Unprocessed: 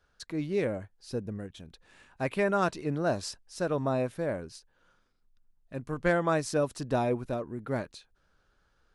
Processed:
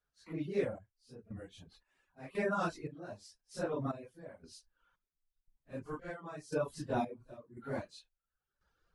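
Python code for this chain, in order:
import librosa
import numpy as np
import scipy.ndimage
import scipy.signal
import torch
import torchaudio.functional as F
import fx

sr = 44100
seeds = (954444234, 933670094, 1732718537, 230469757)

y = fx.phase_scramble(x, sr, seeds[0], window_ms=100)
y = fx.dereverb_blind(y, sr, rt60_s=0.78)
y = fx.step_gate(y, sr, bpm=115, pattern='..xxxx..', floor_db=-12.0, edge_ms=4.5)
y = y * 10.0 ** (-5.5 / 20.0)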